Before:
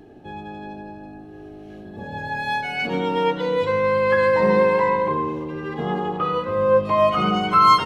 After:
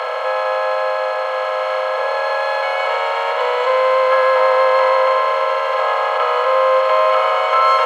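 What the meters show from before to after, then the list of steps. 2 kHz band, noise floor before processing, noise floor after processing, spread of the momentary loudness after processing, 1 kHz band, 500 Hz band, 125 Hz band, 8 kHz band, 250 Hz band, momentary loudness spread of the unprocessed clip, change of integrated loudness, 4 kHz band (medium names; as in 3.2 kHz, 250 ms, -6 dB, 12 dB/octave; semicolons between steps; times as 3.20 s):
+6.5 dB, -40 dBFS, -20 dBFS, 6 LU, +5.5 dB, +5.0 dB, under -40 dB, no reading, under -35 dB, 20 LU, +4.0 dB, +5.0 dB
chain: spectral levelling over time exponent 0.2; Chebyshev high-pass 510 Hz, order 6; treble shelf 3.5 kHz -7.5 dB; trim -1.5 dB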